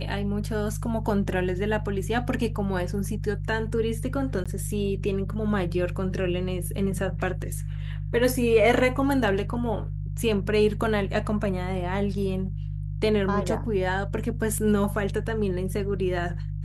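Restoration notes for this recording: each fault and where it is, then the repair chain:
hum 50 Hz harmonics 3 -31 dBFS
4.44–4.46 gap 16 ms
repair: de-hum 50 Hz, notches 3; interpolate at 4.44, 16 ms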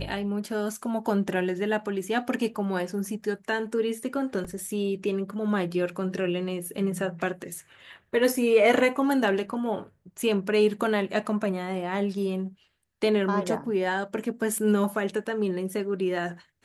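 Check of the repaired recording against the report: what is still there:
none

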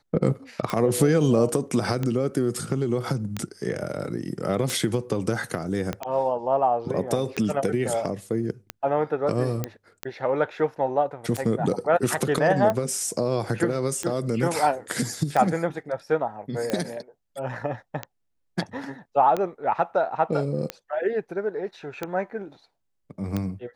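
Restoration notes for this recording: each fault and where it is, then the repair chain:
tick 45 rpm -13 dBFS
5.93 pop -14 dBFS
9.64 pop -12 dBFS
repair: de-click

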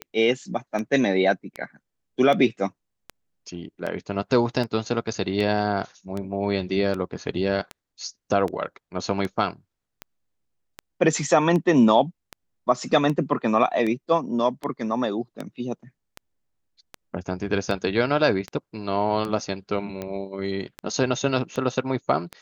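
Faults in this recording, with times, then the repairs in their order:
tick 78 rpm -17 dBFS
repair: de-click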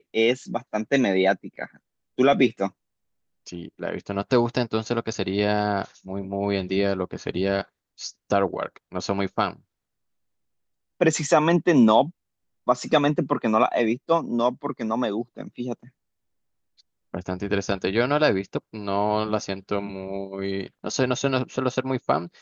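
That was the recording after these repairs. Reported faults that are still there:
none

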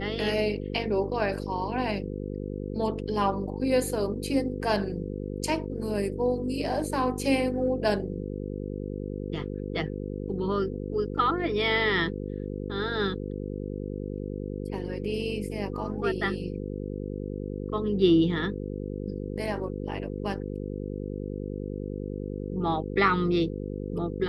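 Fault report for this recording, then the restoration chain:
buzz 50 Hz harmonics 10 -34 dBFS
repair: de-hum 50 Hz, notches 10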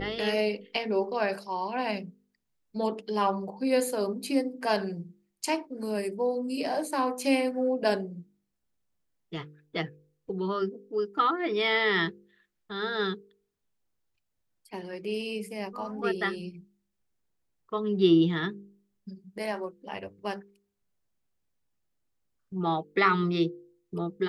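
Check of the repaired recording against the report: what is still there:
none

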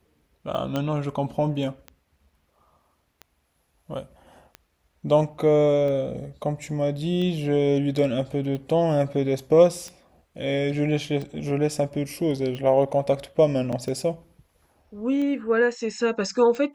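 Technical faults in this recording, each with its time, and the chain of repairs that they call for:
tick 45 rpm -22 dBFS
0.76 pop -14 dBFS
13.72–13.73 gap 6.2 ms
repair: de-click; interpolate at 13.72, 6.2 ms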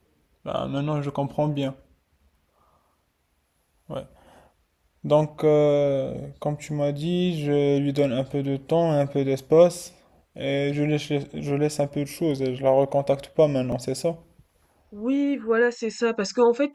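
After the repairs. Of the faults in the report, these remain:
none

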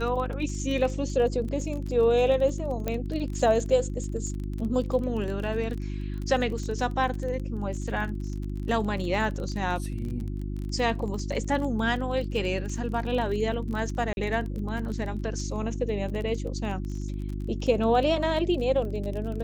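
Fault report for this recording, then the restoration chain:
crackle 27/s -33 dBFS
hum 50 Hz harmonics 7 -32 dBFS
2.88 pop -14 dBFS
14.13–14.17 gap 41 ms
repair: de-click; de-hum 50 Hz, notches 7; interpolate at 14.13, 41 ms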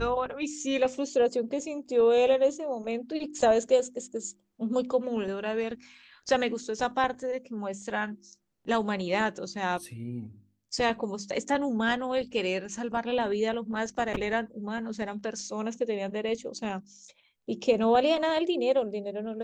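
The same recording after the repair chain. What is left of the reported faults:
none

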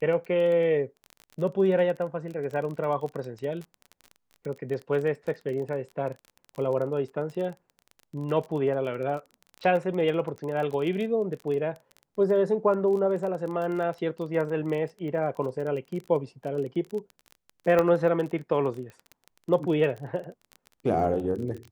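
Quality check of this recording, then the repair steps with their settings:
crackle 25/s -33 dBFS
17.79 pop -12 dBFS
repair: de-click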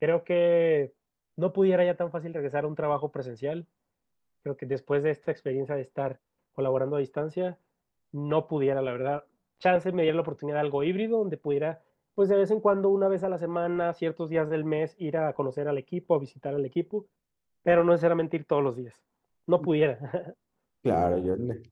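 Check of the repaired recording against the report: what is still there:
none

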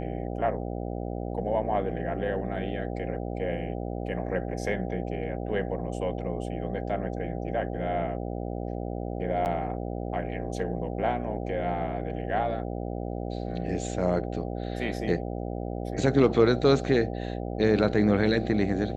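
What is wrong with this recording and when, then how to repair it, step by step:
buzz 60 Hz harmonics 13 -33 dBFS
9.45–9.46 gap 9 ms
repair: de-hum 60 Hz, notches 13; interpolate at 9.45, 9 ms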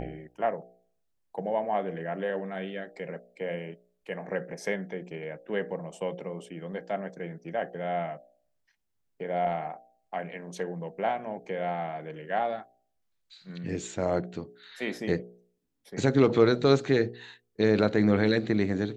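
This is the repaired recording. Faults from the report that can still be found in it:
none

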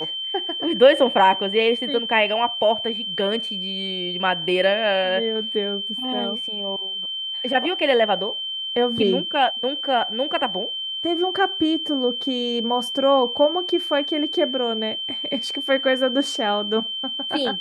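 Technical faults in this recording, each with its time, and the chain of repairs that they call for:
tone 3100 Hz -26 dBFS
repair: notch 3100 Hz, Q 30

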